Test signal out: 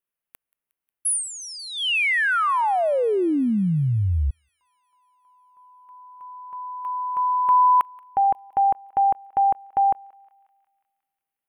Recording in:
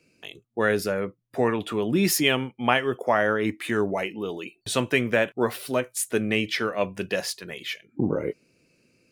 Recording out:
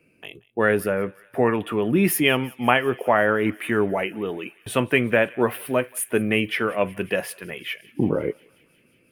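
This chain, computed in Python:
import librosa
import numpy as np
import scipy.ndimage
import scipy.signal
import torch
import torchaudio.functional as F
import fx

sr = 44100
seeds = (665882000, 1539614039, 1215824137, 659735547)

p1 = fx.band_shelf(x, sr, hz=5400.0, db=-15.5, octaves=1.3)
p2 = p1 + fx.echo_thinned(p1, sr, ms=180, feedback_pct=81, hz=1200.0, wet_db=-22.5, dry=0)
y = F.gain(torch.from_numpy(p2), 3.0).numpy()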